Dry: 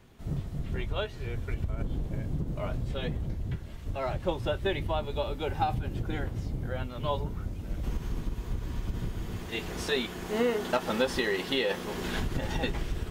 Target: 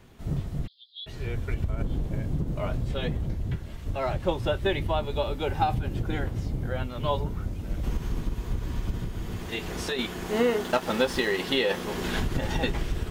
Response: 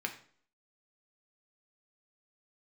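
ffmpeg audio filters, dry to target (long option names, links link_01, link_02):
-filter_complex "[0:a]asplit=3[link_01][link_02][link_03];[link_01]afade=type=out:start_time=0.66:duration=0.02[link_04];[link_02]asuperpass=centerf=4000:order=12:qfactor=2.5,afade=type=in:start_time=0.66:duration=0.02,afade=type=out:start_time=1.06:duration=0.02[link_05];[link_03]afade=type=in:start_time=1.06:duration=0.02[link_06];[link_04][link_05][link_06]amix=inputs=3:normalize=0,asettb=1/sr,asplit=3[link_07][link_08][link_09];[link_07]atrim=end=8.944[link_10];[link_08]atrim=start=8.94:end=9.99,asetpts=PTS-STARTPTS,afade=type=in:duration=0.004:curve=qsin,afade=type=out:start_time=1.046:duration=0.004:curve=qsin,acompressor=threshold=-31dB:ratio=5[link_11];[link_09]atrim=start=9.986[link_12];[link_10][link_11]acrossfade=duration=0.004:curve1=hsin:curve2=qsin[link_13];[link_13][link_12]acrossfade=duration=0.004:curve1=qsin:curve2=hsin,asettb=1/sr,asplit=3[link_14][link_15][link_16];[link_14]atrim=end=10.624[link_17];[link_15]atrim=start=10.62:end=11.4,asetpts=PTS-STARTPTS,afade=type=in:duration=0.004:curve=qsin,afade=type=out:start_time=0.776:duration=0.004:curve=qsin,aeval=exprs='sgn(val(0))*max(abs(val(0))-0.00501,0)':channel_layout=same[link_18];[link_16]atrim=start=11.396[link_19];[link_17][link_18]acrossfade=duration=0.004:curve1=hsin:curve2=qsin[link_20];[link_20][link_19]acrossfade=duration=0.004:curve1=qsin:curve2=hsin,volume=3.5dB"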